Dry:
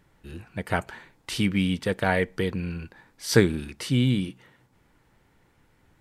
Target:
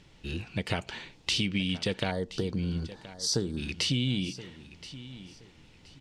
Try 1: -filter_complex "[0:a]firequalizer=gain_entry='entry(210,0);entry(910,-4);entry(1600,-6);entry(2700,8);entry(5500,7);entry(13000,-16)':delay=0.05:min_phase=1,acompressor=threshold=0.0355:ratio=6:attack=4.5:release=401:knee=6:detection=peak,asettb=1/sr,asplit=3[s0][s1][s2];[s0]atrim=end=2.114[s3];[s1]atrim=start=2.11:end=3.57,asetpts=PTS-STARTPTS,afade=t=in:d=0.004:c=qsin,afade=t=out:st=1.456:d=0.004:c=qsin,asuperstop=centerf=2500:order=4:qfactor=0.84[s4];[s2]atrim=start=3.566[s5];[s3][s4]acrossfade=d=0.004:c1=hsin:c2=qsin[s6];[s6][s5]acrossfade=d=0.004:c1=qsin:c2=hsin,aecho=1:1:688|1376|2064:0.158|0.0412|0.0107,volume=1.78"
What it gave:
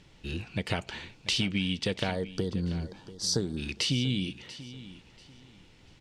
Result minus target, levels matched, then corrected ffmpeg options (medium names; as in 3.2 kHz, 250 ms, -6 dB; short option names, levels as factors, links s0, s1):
echo 336 ms early
-filter_complex "[0:a]firequalizer=gain_entry='entry(210,0);entry(910,-4);entry(1600,-6);entry(2700,8);entry(5500,7);entry(13000,-16)':delay=0.05:min_phase=1,acompressor=threshold=0.0355:ratio=6:attack=4.5:release=401:knee=6:detection=peak,asettb=1/sr,asplit=3[s0][s1][s2];[s0]atrim=end=2.114[s3];[s1]atrim=start=2.11:end=3.57,asetpts=PTS-STARTPTS,afade=t=in:d=0.004:c=qsin,afade=t=out:st=1.456:d=0.004:c=qsin,asuperstop=centerf=2500:order=4:qfactor=0.84[s4];[s2]atrim=start=3.566[s5];[s3][s4]acrossfade=d=0.004:c1=hsin:c2=qsin[s6];[s6][s5]acrossfade=d=0.004:c1=qsin:c2=hsin,aecho=1:1:1024|2048|3072:0.158|0.0412|0.0107,volume=1.78"